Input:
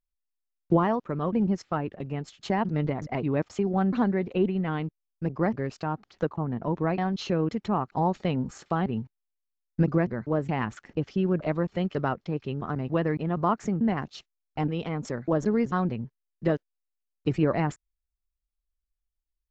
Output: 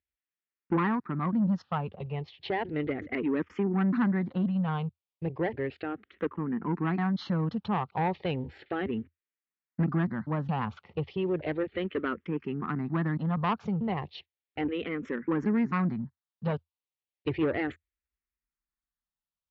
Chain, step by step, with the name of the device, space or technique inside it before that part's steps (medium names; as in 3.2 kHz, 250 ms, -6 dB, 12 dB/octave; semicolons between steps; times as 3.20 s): barber-pole phaser into a guitar amplifier (barber-pole phaser -0.34 Hz; saturation -23.5 dBFS, distortion -13 dB; cabinet simulation 81–3800 Hz, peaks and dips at 83 Hz +6 dB, 120 Hz -5 dB, 630 Hz -7 dB, 1.9 kHz +4 dB); trim +3 dB